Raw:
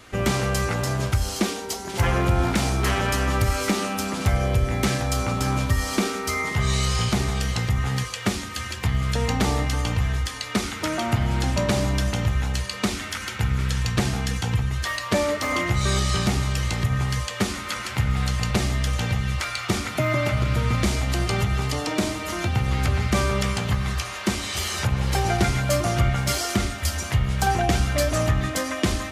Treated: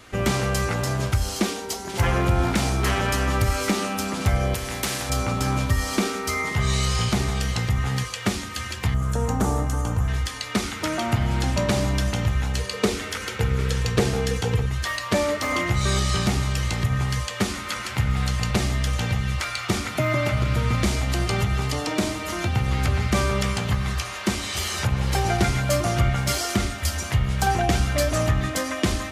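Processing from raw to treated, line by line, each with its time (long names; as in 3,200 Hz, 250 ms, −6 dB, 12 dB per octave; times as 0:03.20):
0:04.54–0:05.10: every bin compressed towards the loudest bin 2 to 1
0:08.94–0:10.08: flat-topped bell 3,100 Hz −12.5 dB
0:12.56–0:14.66: parametric band 450 Hz +15 dB 0.37 octaves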